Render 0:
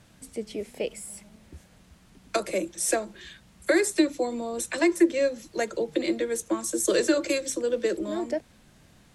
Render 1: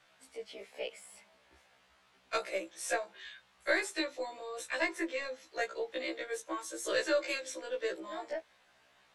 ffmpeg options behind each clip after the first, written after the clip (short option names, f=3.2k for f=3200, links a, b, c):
-filter_complex "[0:a]acrossover=split=530 4500:gain=0.0631 1 0.224[a][b][c];[a][b][c]amix=inputs=3:normalize=0,aeval=exprs='0.178*(cos(1*acos(clip(val(0)/0.178,-1,1)))-cos(1*PI/2))+0.0126*(cos(2*acos(clip(val(0)/0.178,-1,1)))-cos(2*PI/2))':c=same,afftfilt=real='re*1.73*eq(mod(b,3),0)':imag='im*1.73*eq(mod(b,3),0)':win_size=2048:overlap=0.75"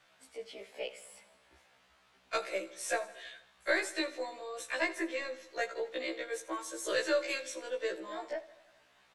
-af "aecho=1:1:81|162|243|324|405|486:0.141|0.0848|0.0509|0.0305|0.0183|0.011"